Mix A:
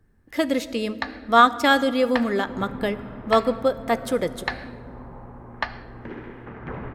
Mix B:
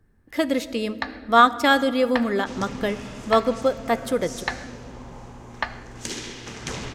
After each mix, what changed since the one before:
second sound: remove low-pass filter 1,700 Hz 24 dB per octave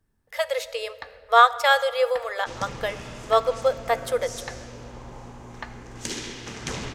speech: add linear-phase brick-wall high-pass 430 Hz
first sound −10.5 dB

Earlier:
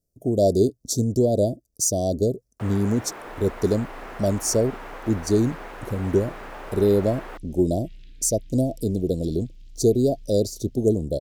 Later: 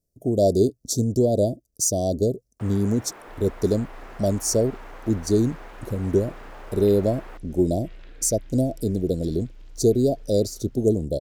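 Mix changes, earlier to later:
first sound −5.5 dB
second sound: remove Chebyshev band-stop filter 200–3,300 Hz, order 2

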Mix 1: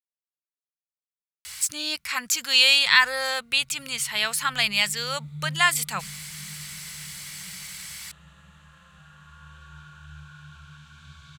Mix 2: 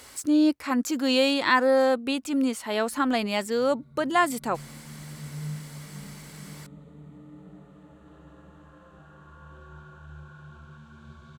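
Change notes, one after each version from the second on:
speech: entry −1.45 s
master: remove drawn EQ curve 180 Hz 0 dB, 260 Hz −24 dB, 2,400 Hz +11 dB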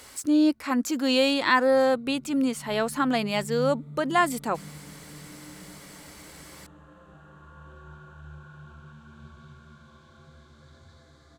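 background: entry −1.85 s

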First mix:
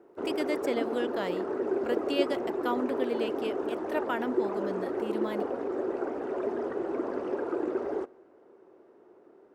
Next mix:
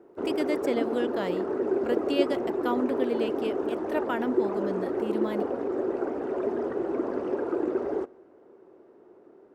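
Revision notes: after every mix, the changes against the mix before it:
master: add low-shelf EQ 420 Hz +5.5 dB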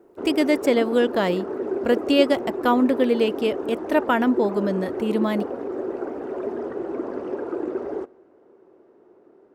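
speech +10.0 dB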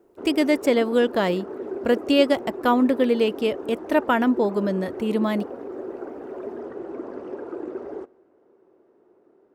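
background −5.0 dB

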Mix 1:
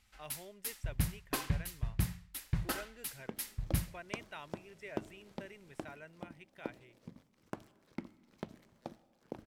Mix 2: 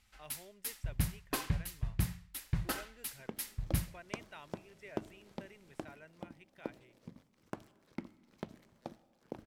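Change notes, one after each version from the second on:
speech −4.0 dB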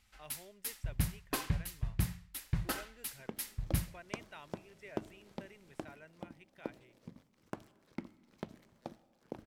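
nothing changed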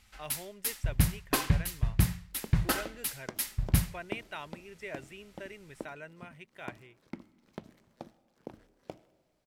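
speech +10.0 dB
first sound +7.5 dB
second sound: entry −0.85 s

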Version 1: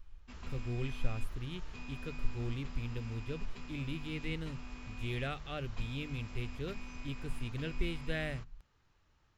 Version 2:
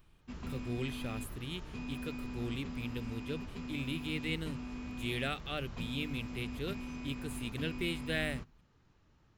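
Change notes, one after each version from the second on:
speech: add spectral tilt +3.5 dB per octave
master: add parametric band 210 Hz +10 dB 2.6 octaves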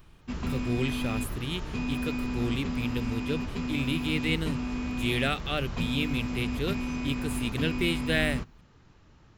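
speech +8.0 dB
background +10.5 dB

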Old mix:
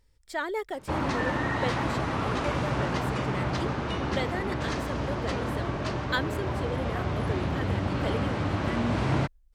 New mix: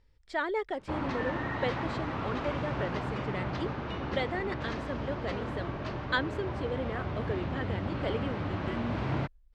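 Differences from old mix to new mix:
background −5.5 dB
master: add low-pass filter 4,000 Hz 12 dB per octave

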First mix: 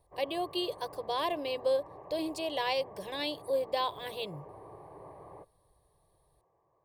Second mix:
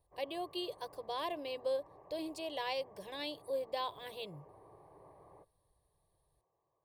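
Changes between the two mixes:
speech −6.5 dB
background −9.5 dB

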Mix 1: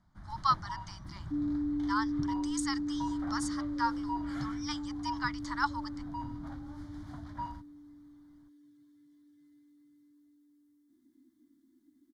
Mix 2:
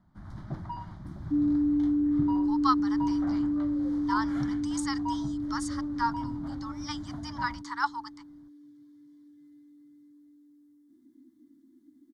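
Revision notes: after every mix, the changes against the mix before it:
speech: entry +2.20 s
master: add parametric band 270 Hz +7.5 dB 2.9 octaves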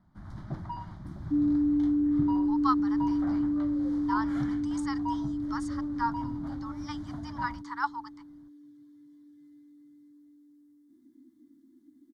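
speech: add high-shelf EQ 2,700 Hz −11 dB

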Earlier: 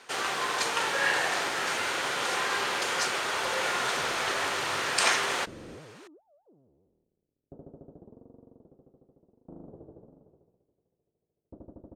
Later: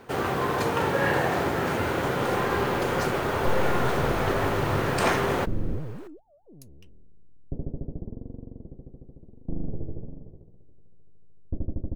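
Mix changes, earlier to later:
speech: unmuted
first sound +3.0 dB
master: remove meter weighting curve ITU-R 468

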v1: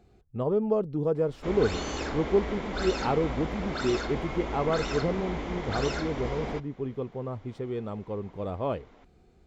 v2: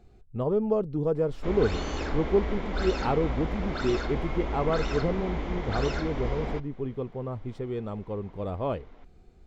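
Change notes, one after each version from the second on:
background: add high-frequency loss of the air 73 metres
master: remove high-pass filter 82 Hz 6 dB per octave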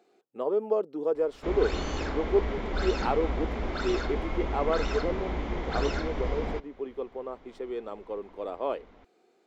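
speech: add high-pass filter 320 Hz 24 dB per octave

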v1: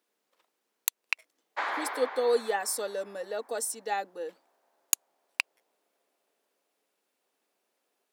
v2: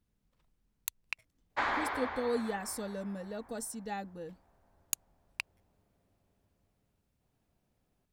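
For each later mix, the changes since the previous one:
speech −8.5 dB
master: remove high-pass filter 380 Hz 24 dB per octave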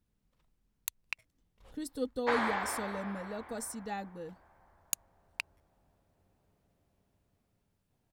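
background: entry +0.70 s

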